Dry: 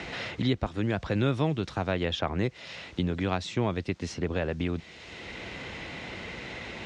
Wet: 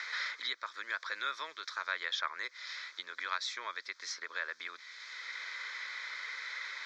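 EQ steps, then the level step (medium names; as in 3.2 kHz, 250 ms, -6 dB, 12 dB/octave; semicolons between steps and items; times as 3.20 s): high-pass 840 Hz 24 dB/octave; static phaser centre 2.8 kHz, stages 6; +3.0 dB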